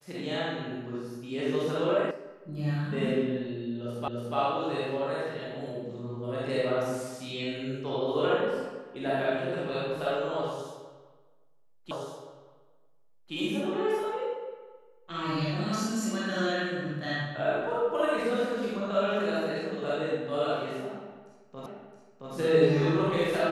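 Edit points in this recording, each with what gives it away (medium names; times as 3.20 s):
2.11 s: sound stops dead
4.08 s: repeat of the last 0.29 s
11.91 s: repeat of the last 1.42 s
21.66 s: repeat of the last 0.67 s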